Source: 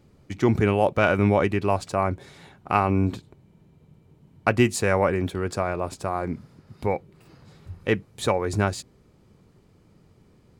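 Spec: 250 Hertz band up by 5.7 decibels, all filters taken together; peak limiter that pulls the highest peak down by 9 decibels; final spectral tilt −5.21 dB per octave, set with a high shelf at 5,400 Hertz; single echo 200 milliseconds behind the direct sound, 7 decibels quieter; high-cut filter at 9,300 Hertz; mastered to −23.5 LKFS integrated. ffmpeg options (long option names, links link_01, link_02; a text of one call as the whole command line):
ffmpeg -i in.wav -af "lowpass=9300,equalizer=frequency=250:width_type=o:gain=7.5,highshelf=frequency=5400:gain=-8,alimiter=limit=-11.5dB:level=0:latency=1,aecho=1:1:200:0.447,volume=1dB" out.wav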